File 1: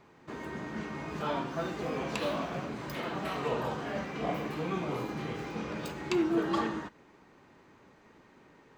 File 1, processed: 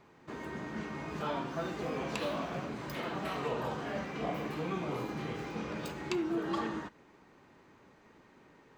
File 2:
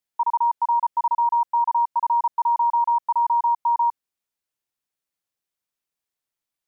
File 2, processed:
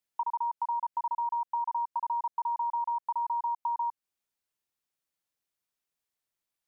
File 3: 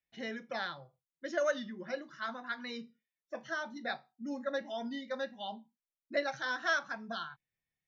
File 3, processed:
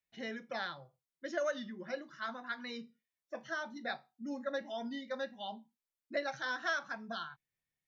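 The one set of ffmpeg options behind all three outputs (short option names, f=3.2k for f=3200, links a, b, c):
-af "acompressor=threshold=-28dB:ratio=6,volume=-1.5dB"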